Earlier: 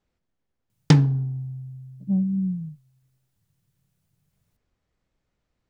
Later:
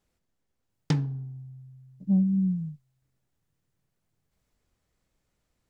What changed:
speech: remove air absorption 90 m; background -10.5 dB

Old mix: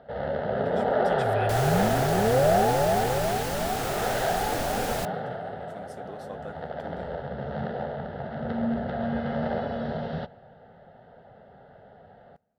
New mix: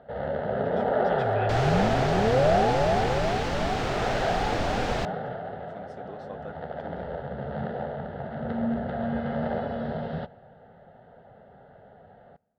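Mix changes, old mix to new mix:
second sound +5.0 dB; master: add air absorption 150 m

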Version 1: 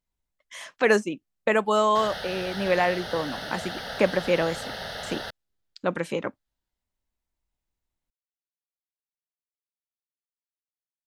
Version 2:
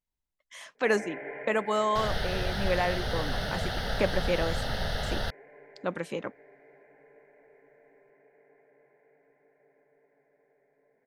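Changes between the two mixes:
speech -5.5 dB; first sound: unmuted; second sound: remove HPF 370 Hz 6 dB/oct

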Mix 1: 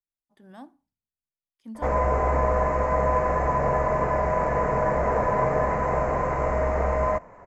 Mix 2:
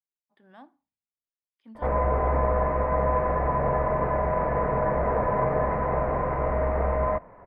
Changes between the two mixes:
speech: add tilt +3.5 dB/oct; master: add air absorption 430 m

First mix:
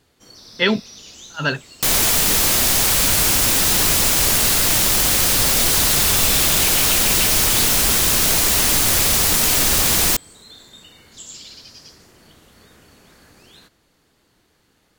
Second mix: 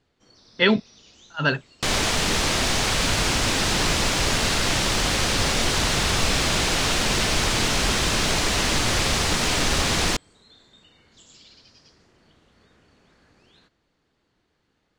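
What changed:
first sound -8.0 dB; master: add air absorption 100 m

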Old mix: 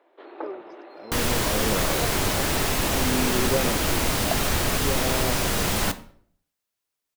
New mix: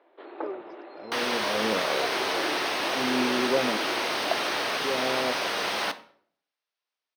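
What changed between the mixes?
second sound: add HPF 490 Hz 12 dB/oct; master: add polynomial smoothing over 15 samples

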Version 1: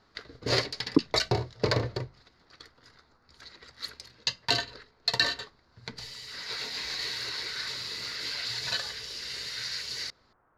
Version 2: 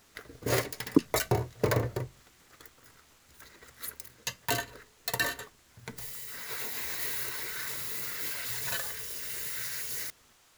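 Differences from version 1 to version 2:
speech: remove steep low-pass 1500 Hz 36 dB/oct; master: remove synth low-pass 4500 Hz, resonance Q 4.6

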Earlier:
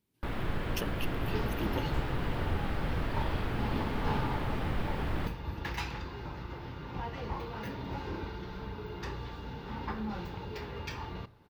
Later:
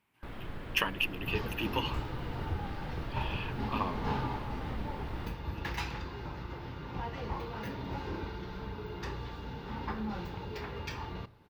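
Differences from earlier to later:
speech: add band shelf 1400 Hz +14.5 dB 2.4 oct; first sound -8.5 dB

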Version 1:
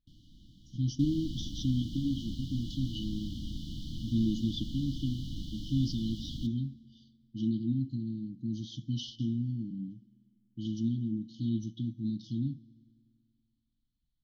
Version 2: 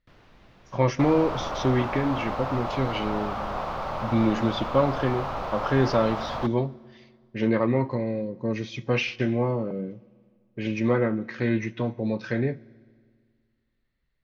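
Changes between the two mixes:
speech +5.0 dB; master: remove brick-wall FIR band-stop 330–2900 Hz

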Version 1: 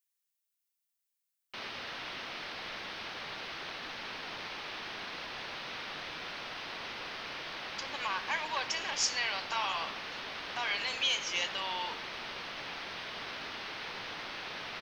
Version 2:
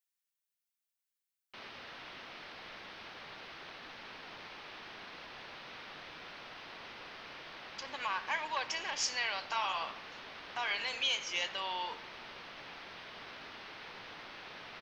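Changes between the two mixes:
background -6.0 dB; master: add high shelf 3900 Hz -5.5 dB

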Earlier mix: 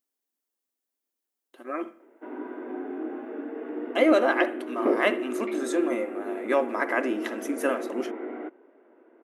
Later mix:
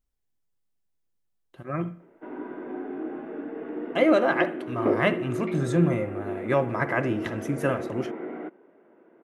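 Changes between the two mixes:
speech: add high shelf 7300 Hz -9 dB; master: remove brick-wall FIR high-pass 220 Hz

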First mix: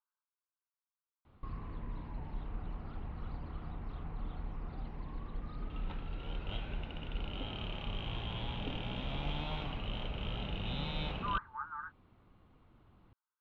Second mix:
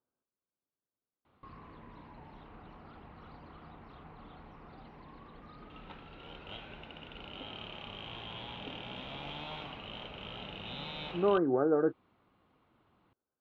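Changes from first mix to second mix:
speech: remove brick-wall FIR high-pass 840 Hz; master: add HPF 330 Hz 6 dB/oct

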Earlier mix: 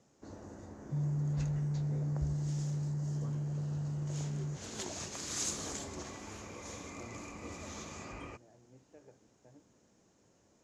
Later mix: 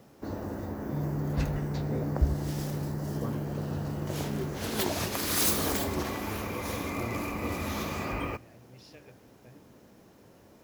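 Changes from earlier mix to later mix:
speech: remove Chebyshev band-pass 180–990 Hz, order 2; first sound: remove ladder low-pass 7400 Hz, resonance 70%; reverb: on

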